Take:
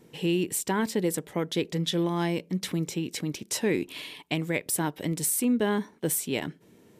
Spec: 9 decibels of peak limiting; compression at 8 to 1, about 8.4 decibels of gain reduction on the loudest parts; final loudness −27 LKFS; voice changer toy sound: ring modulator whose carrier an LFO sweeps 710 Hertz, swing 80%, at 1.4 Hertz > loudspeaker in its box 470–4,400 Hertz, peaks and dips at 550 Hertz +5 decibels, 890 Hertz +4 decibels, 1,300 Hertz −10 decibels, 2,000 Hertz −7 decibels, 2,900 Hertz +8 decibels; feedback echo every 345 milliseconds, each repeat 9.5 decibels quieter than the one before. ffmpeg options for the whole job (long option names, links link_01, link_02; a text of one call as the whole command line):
ffmpeg -i in.wav -af "acompressor=threshold=-30dB:ratio=8,alimiter=level_in=2.5dB:limit=-24dB:level=0:latency=1,volume=-2.5dB,aecho=1:1:345|690|1035|1380:0.335|0.111|0.0365|0.012,aeval=exprs='val(0)*sin(2*PI*710*n/s+710*0.8/1.4*sin(2*PI*1.4*n/s))':channel_layout=same,highpass=470,equalizer=frequency=550:width_type=q:width=4:gain=5,equalizer=frequency=890:width_type=q:width=4:gain=4,equalizer=frequency=1300:width_type=q:width=4:gain=-10,equalizer=frequency=2000:width_type=q:width=4:gain=-7,equalizer=frequency=2900:width_type=q:width=4:gain=8,lowpass=frequency=4400:width=0.5412,lowpass=frequency=4400:width=1.3066,volume=13dB" out.wav